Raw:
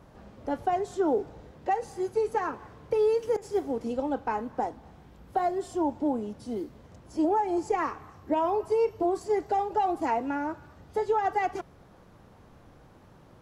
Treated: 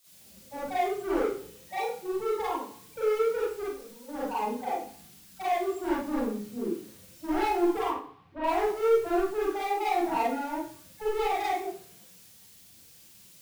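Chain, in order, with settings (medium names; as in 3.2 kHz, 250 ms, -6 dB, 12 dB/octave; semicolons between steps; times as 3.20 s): high-pass 130 Hz 6 dB/octave; phase dispersion lows, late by 61 ms, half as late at 960 Hz; 3.63–4.09 s: valve stage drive 45 dB, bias 0.8; loudest bins only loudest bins 8; hard clipper -28.5 dBFS, distortion -8 dB; added noise white -56 dBFS; 7.86–8.44 s: distance through air 370 m; Schroeder reverb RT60 0.48 s, combs from 33 ms, DRR -7 dB; three bands expanded up and down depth 40%; trim -4 dB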